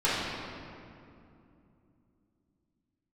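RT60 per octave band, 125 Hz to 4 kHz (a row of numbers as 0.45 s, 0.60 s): 3.9 s, 4.1 s, 2.9 s, 2.4 s, 2.0 s, 1.5 s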